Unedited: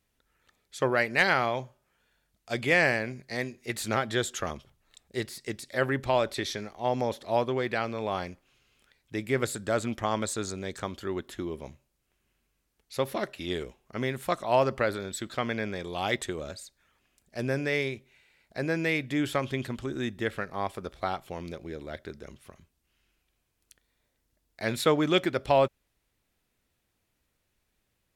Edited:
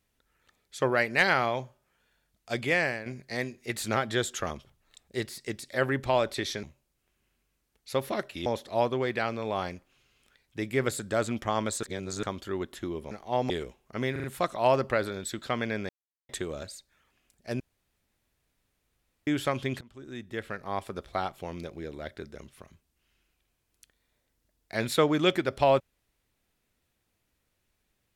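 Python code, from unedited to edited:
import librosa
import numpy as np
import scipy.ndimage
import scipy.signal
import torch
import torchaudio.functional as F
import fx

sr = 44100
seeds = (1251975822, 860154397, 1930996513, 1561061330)

y = fx.edit(x, sr, fx.fade_out_to(start_s=2.53, length_s=0.53, floor_db=-10.0),
    fx.swap(start_s=6.63, length_s=0.39, other_s=11.67, other_length_s=1.83),
    fx.reverse_span(start_s=10.39, length_s=0.4),
    fx.stutter(start_s=14.12, slice_s=0.04, count=4),
    fx.silence(start_s=15.77, length_s=0.4),
    fx.room_tone_fill(start_s=17.48, length_s=1.67),
    fx.fade_in_from(start_s=19.69, length_s=1.07, floor_db=-23.0), tone=tone)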